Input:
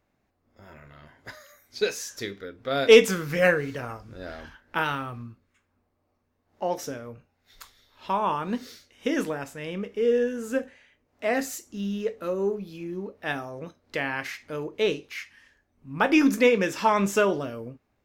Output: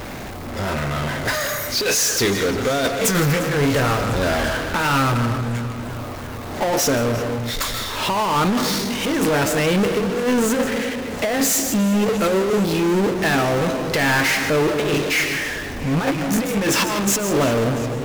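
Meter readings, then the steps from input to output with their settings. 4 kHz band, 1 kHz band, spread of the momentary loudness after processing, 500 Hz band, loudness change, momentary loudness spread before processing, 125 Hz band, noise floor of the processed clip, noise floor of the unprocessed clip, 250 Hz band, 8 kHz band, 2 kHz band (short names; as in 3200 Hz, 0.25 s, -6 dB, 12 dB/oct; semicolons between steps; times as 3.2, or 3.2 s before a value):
+10.5 dB, +7.5 dB, 7 LU, +4.0 dB, +6.0 dB, 20 LU, +15.0 dB, -30 dBFS, -74 dBFS, +9.0 dB, +17.0 dB, +8.0 dB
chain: negative-ratio compressor -30 dBFS, ratio -0.5; digital reverb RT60 0.86 s, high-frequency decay 0.3×, pre-delay 0.11 s, DRR 13.5 dB; power-law curve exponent 0.35; warbling echo 0.349 s, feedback 78%, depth 50 cents, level -18 dB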